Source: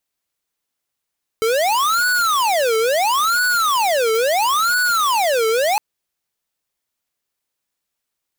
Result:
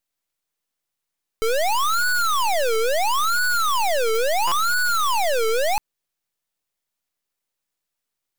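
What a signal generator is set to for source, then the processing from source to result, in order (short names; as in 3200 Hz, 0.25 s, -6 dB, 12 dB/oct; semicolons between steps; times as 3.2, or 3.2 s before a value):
siren wail 441–1480 Hz 0.74/s square -17 dBFS 4.36 s
half-wave gain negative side -12 dB; stuck buffer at 4.47, samples 256, times 7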